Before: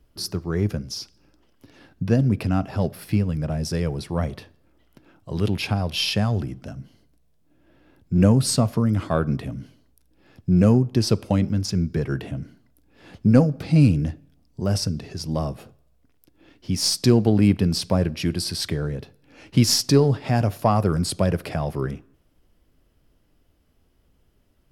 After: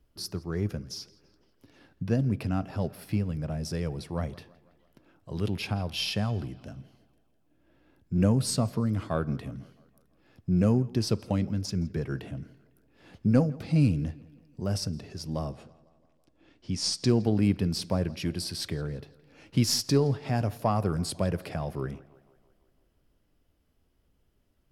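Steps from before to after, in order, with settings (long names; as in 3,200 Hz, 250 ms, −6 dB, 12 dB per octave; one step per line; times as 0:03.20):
0:15.52–0:17.09: low-pass filter 9,000 Hz 24 dB per octave
tape delay 167 ms, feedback 61%, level −21 dB, low-pass 4,600 Hz
level −7 dB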